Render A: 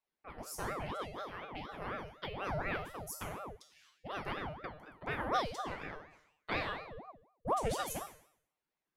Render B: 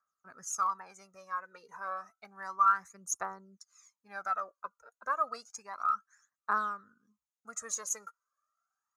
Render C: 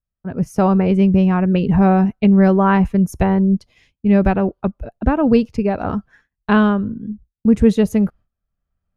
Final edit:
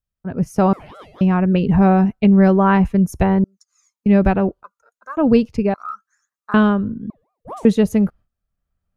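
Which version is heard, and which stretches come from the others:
C
0.73–1.21 s: from A
3.44–4.06 s: from B
4.63–5.17 s: from B
5.74–6.54 s: from B
7.10–7.65 s: from A

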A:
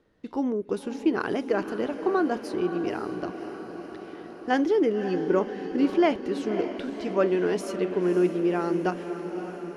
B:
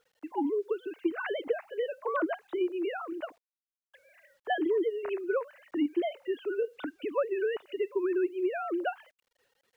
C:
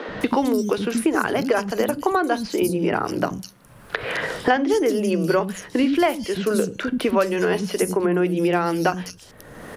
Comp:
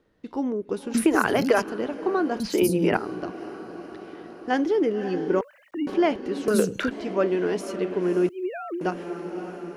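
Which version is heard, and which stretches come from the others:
A
0.94–1.62 s: from C
2.40–2.97 s: from C
5.41–5.87 s: from B
6.48–6.91 s: from C
8.29–8.81 s: from B

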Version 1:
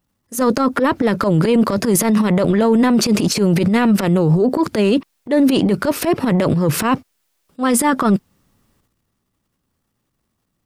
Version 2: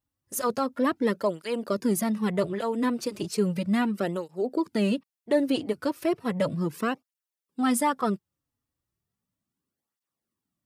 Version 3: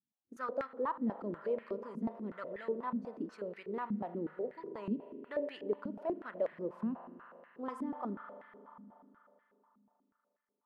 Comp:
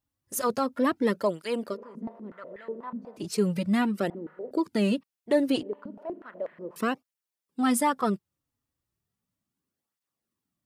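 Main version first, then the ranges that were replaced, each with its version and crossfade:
2
1.71–3.22 s: from 3, crossfade 0.16 s
4.10–4.51 s: from 3
5.63–6.76 s: from 3
not used: 1

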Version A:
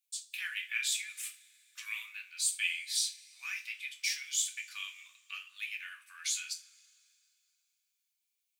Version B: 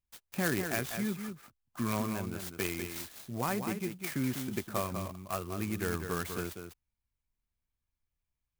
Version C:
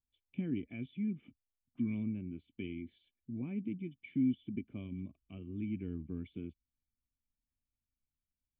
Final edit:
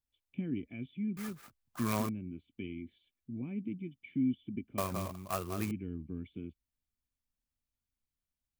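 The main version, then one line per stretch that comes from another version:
C
1.17–2.09 s: from B
4.78–5.71 s: from B
not used: A

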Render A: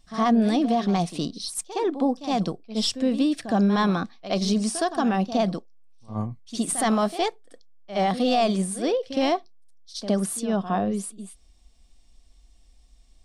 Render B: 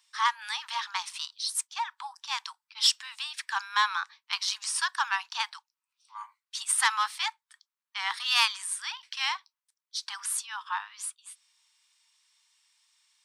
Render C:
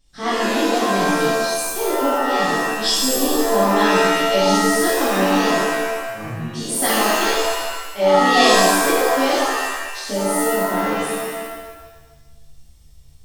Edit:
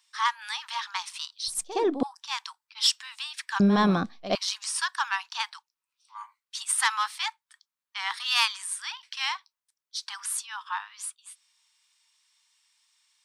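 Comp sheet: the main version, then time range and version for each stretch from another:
B
1.48–2.03 s: from A
3.60–4.35 s: from A
not used: C

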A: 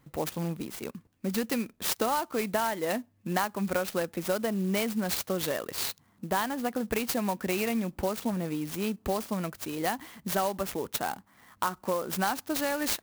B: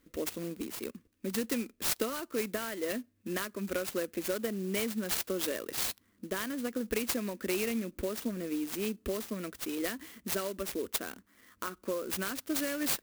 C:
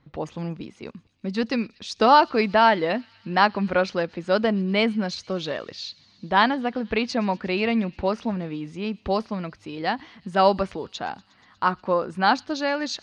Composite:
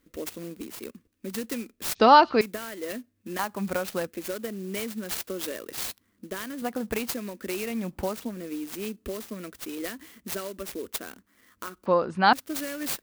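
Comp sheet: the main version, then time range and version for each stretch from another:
B
1.95–2.41 s: from C
3.39–4.07 s: from A
6.62–7.11 s: from A
7.73–8.23 s: from A, crossfade 0.24 s
11.86–12.33 s: from C

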